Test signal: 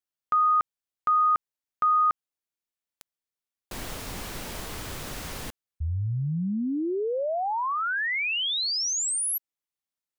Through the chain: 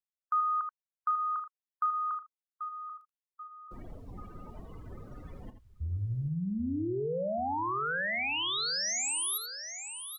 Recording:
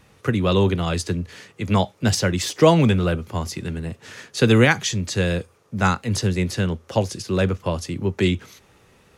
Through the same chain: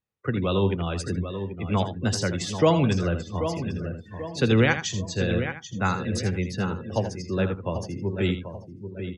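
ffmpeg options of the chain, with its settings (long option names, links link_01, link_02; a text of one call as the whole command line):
ffmpeg -i in.wav -filter_complex "[0:a]asplit=2[link_01][link_02];[link_02]aecho=0:1:786|1572|2358|3144|3930:0.355|0.16|0.0718|0.0323|0.0145[link_03];[link_01][link_03]amix=inputs=2:normalize=0,afftdn=noise_reduction=31:noise_floor=-33,asplit=2[link_04][link_05];[link_05]aecho=0:1:81:0.316[link_06];[link_04][link_06]amix=inputs=2:normalize=0,volume=-5.5dB" out.wav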